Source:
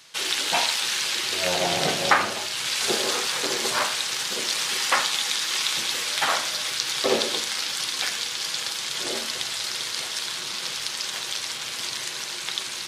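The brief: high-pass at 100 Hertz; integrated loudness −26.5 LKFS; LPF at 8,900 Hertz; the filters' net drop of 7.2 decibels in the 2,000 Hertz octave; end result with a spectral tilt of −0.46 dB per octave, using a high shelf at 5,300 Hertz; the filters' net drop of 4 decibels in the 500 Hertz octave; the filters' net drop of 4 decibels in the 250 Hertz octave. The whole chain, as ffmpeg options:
ffmpeg -i in.wav -af "highpass=100,lowpass=8900,equalizer=frequency=250:width_type=o:gain=-4,equalizer=frequency=500:width_type=o:gain=-3.5,equalizer=frequency=2000:width_type=o:gain=-8.5,highshelf=frequency=5300:gain=-5,volume=2dB" out.wav

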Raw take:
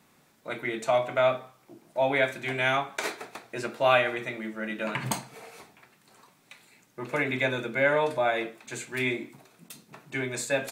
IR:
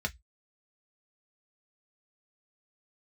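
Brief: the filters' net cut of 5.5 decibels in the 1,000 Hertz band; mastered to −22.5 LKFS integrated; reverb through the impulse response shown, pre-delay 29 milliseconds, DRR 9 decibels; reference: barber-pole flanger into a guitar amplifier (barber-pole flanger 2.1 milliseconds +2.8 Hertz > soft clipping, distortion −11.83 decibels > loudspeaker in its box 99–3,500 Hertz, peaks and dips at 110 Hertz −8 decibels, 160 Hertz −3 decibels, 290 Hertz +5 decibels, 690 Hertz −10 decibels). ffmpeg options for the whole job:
-filter_complex "[0:a]equalizer=frequency=1000:width_type=o:gain=-3.5,asplit=2[link_01][link_02];[1:a]atrim=start_sample=2205,adelay=29[link_03];[link_02][link_03]afir=irnorm=-1:irlink=0,volume=-13.5dB[link_04];[link_01][link_04]amix=inputs=2:normalize=0,asplit=2[link_05][link_06];[link_06]adelay=2.1,afreqshift=2.8[link_07];[link_05][link_07]amix=inputs=2:normalize=1,asoftclip=threshold=-25.5dB,highpass=99,equalizer=frequency=110:width_type=q:width=4:gain=-8,equalizer=frequency=160:width_type=q:width=4:gain=-3,equalizer=frequency=290:width_type=q:width=4:gain=5,equalizer=frequency=690:width_type=q:width=4:gain=-10,lowpass=frequency=3500:width=0.5412,lowpass=frequency=3500:width=1.3066,volume=13.5dB"

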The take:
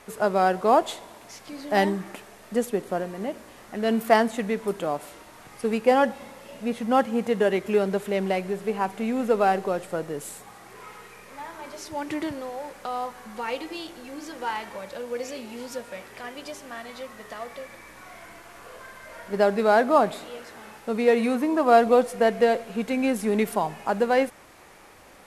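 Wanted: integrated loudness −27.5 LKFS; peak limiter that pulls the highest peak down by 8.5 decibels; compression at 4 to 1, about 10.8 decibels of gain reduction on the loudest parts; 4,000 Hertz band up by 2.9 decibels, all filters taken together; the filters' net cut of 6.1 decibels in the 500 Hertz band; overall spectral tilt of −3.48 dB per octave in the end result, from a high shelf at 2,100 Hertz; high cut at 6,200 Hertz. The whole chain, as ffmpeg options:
ffmpeg -i in.wav -af "lowpass=6200,equalizer=frequency=500:width_type=o:gain=-7.5,highshelf=frequency=2100:gain=-3.5,equalizer=frequency=4000:width_type=o:gain=8,acompressor=threshold=-29dB:ratio=4,volume=9.5dB,alimiter=limit=-15dB:level=0:latency=1" out.wav

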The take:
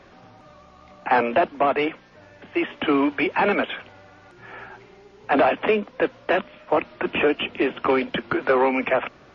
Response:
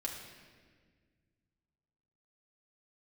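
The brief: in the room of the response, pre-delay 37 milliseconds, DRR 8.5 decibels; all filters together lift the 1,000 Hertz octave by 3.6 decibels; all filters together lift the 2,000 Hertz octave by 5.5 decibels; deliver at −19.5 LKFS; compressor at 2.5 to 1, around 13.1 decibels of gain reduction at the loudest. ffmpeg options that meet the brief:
-filter_complex "[0:a]equalizer=frequency=1000:width_type=o:gain=3.5,equalizer=frequency=2000:width_type=o:gain=6,acompressor=threshold=-33dB:ratio=2.5,asplit=2[link_01][link_02];[1:a]atrim=start_sample=2205,adelay=37[link_03];[link_02][link_03]afir=irnorm=-1:irlink=0,volume=-9.5dB[link_04];[link_01][link_04]amix=inputs=2:normalize=0,volume=12dB"

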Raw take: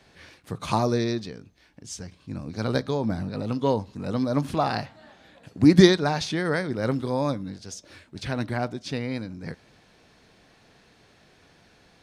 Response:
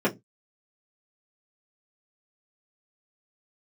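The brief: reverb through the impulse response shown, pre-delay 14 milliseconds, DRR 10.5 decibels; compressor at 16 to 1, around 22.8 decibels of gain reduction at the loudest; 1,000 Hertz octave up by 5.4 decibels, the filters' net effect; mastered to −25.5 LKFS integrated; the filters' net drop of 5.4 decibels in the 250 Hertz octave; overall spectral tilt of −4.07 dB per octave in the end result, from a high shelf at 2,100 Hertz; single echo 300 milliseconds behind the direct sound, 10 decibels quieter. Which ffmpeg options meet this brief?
-filter_complex "[0:a]equalizer=frequency=250:width_type=o:gain=-8.5,equalizer=frequency=1000:width_type=o:gain=6,highshelf=frequency=2100:gain=7.5,acompressor=threshold=-34dB:ratio=16,aecho=1:1:300:0.316,asplit=2[link_01][link_02];[1:a]atrim=start_sample=2205,adelay=14[link_03];[link_02][link_03]afir=irnorm=-1:irlink=0,volume=-24dB[link_04];[link_01][link_04]amix=inputs=2:normalize=0,volume=13dB"

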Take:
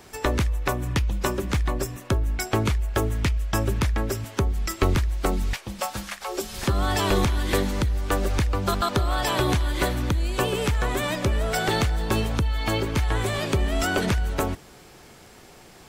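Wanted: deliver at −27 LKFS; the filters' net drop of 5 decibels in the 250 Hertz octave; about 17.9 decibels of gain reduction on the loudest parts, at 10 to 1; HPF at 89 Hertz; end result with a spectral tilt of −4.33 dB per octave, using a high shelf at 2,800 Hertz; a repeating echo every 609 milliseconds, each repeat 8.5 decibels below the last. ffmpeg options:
ffmpeg -i in.wav -af "highpass=89,equalizer=frequency=250:width_type=o:gain=-7,highshelf=frequency=2800:gain=-3.5,acompressor=threshold=-40dB:ratio=10,aecho=1:1:609|1218|1827|2436:0.376|0.143|0.0543|0.0206,volume=16dB" out.wav

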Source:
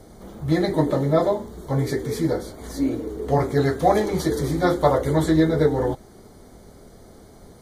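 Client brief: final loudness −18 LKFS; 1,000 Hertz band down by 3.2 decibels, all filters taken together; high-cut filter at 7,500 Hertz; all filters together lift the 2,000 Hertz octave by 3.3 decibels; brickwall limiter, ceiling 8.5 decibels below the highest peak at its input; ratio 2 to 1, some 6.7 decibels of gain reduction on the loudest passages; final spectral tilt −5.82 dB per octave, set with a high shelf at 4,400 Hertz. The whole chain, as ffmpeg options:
ffmpeg -i in.wav -af "lowpass=7500,equalizer=frequency=1000:width_type=o:gain=-6,equalizer=frequency=2000:width_type=o:gain=7,highshelf=frequency=4400:gain=-5.5,acompressor=threshold=-26dB:ratio=2,volume=12.5dB,alimiter=limit=-8dB:level=0:latency=1" out.wav

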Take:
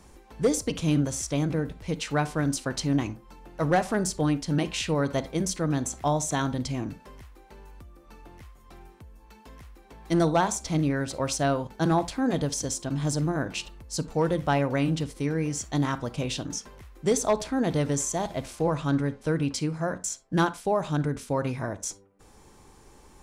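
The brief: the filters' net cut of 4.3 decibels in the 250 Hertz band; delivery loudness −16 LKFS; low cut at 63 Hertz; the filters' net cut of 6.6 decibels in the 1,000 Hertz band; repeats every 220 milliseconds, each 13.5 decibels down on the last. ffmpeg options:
ffmpeg -i in.wav -af "highpass=63,equalizer=frequency=250:width_type=o:gain=-5.5,equalizer=frequency=1000:width_type=o:gain=-9,aecho=1:1:220|440:0.211|0.0444,volume=14.5dB" out.wav

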